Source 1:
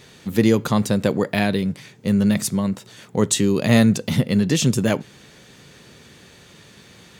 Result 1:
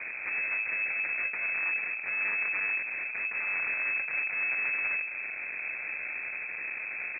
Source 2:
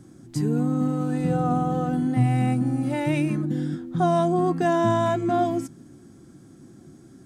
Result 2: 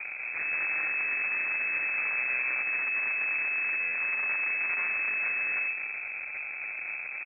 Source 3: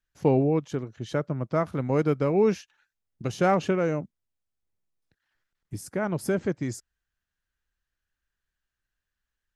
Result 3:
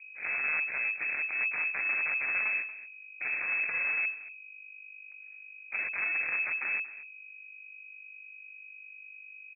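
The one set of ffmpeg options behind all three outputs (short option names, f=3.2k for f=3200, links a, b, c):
-af "acrusher=samples=29:mix=1:aa=0.000001,acompressor=threshold=-25dB:ratio=6,alimiter=limit=-23dB:level=0:latency=1:release=461,lowshelf=f=310:g=4,aeval=exprs='0.106*(cos(1*acos(clip(val(0)/0.106,-1,1)))-cos(1*PI/2))+0.0211*(cos(4*acos(clip(val(0)/0.106,-1,1)))-cos(4*PI/2))+0.0376*(cos(8*acos(clip(val(0)/0.106,-1,1)))-cos(8*PI/2))':c=same,asoftclip=type=hard:threshold=-36.5dB,aeval=exprs='val(0)+0.002*(sin(2*PI*50*n/s)+sin(2*PI*2*50*n/s)/2+sin(2*PI*3*50*n/s)/3+sin(2*PI*4*50*n/s)/4+sin(2*PI*5*50*n/s)/5)':c=same,aecho=1:1:232:0.15,lowpass=f=2.2k:t=q:w=0.5098,lowpass=f=2.2k:t=q:w=0.6013,lowpass=f=2.2k:t=q:w=0.9,lowpass=f=2.2k:t=q:w=2.563,afreqshift=-2600,volume=7dB"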